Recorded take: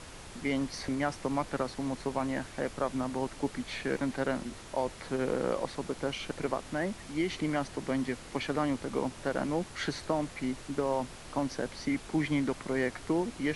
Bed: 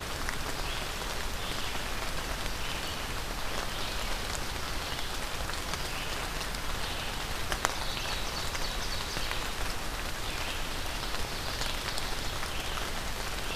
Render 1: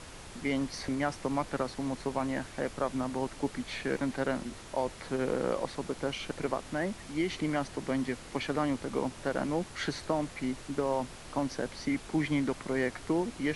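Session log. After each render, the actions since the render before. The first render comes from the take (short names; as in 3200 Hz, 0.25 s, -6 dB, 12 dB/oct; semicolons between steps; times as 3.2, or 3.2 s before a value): nothing audible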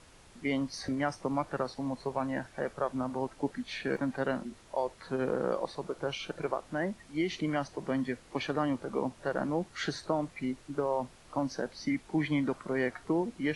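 noise print and reduce 10 dB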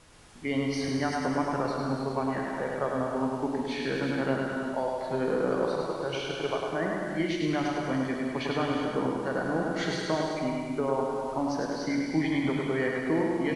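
on a send: feedback echo 0.103 s, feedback 54%, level -4 dB; on the sum: non-linear reverb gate 0.42 s flat, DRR 1 dB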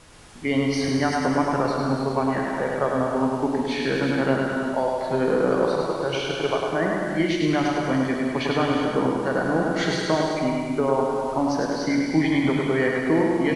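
gain +6.5 dB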